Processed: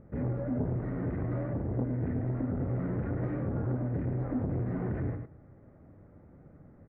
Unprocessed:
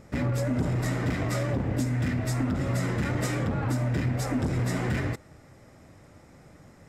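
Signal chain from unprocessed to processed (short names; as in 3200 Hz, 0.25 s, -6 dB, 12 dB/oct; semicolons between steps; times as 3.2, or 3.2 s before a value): LPF 1400 Hz 24 dB/oct; bell 990 Hz -9 dB 1.4 oct; echo 0.101 s -7.5 dB; core saturation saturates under 300 Hz; gain -1.5 dB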